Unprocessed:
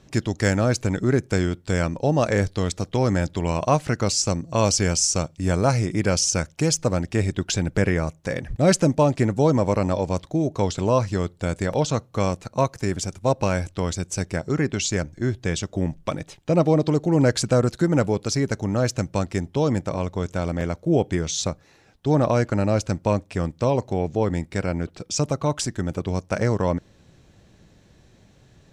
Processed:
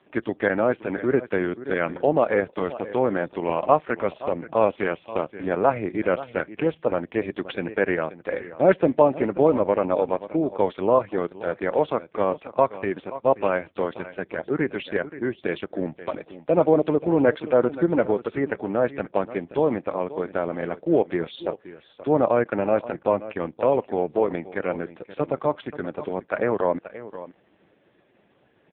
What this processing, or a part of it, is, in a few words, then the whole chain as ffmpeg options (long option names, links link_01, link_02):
satellite phone: -af "highpass=330,lowpass=3000,aecho=1:1:530:0.178,volume=3.5dB" -ar 8000 -c:a libopencore_amrnb -b:a 4750